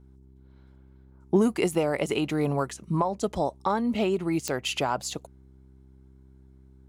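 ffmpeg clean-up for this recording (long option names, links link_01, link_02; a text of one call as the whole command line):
ffmpeg -i in.wav -af "adeclick=threshold=4,bandreject=frequency=65.7:width_type=h:width=4,bandreject=frequency=131.4:width_type=h:width=4,bandreject=frequency=197.1:width_type=h:width=4,bandreject=frequency=262.8:width_type=h:width=4,bandreject=frequency=328.5:width_type=h:width=4,bandreject=frequency=394.2:width_type=h:width=4" out.wav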